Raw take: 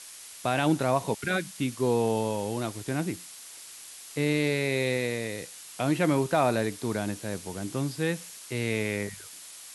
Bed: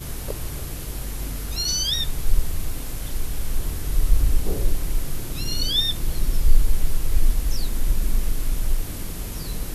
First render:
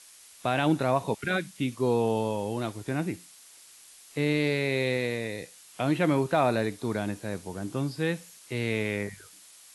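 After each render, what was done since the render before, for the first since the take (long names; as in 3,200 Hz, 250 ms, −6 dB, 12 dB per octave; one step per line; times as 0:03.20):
noise reduction from a noise print 7 dB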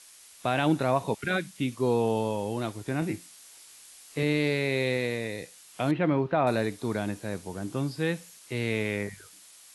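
0:03.00–0:04.23: double-tracking delay 19 ms −4.5 dB
0:05.91–0:06.47: high-frequency loss of the air 320 metres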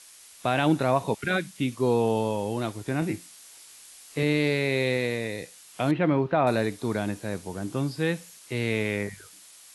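level +2 dB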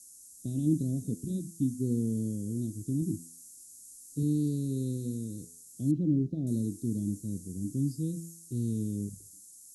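elliptic band-stop filter 280–6,700 Hz, stop band 60 dB
hum removal 83.61 Hz, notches 31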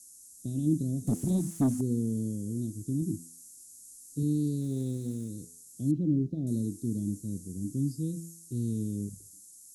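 0:01.07–0:01.81: leveller curve on the samples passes 2
0:04.61–0:05.29: phase distortion by the signal itself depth 0.073 ms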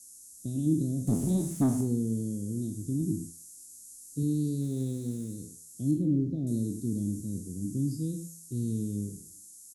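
peak hold with a decay on every bin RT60 0.42 s
single-tap delay 106 ms −13 dB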